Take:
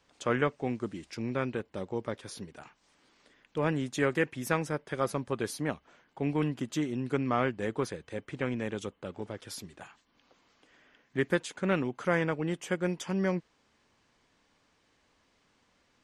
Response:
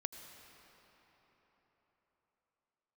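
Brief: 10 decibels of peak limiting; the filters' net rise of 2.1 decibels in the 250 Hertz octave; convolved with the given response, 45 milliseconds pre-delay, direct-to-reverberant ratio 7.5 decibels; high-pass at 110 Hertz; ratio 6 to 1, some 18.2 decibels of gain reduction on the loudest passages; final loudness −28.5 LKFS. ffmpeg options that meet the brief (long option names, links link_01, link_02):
-filter_complex "[0:a]highpass=110,equalizer=frequency=250:width_type=o:gain=3,acompressor=threshold=-42dB:ratio=6,alimiter=level_in=10.5dB:limit=-24dB:level=0:latency=1,volume=-10.5dB,asplit=2[link_01][link_02];[1:a]atrim=start_sample=2205,adelay=45[link_03];[link_02][link_03]afir=irnorm=-1:irlink=0,volume=-6dB[link_04];[link_01][link_04]amix=inputs=2:normalize=0,volume=18.5dB"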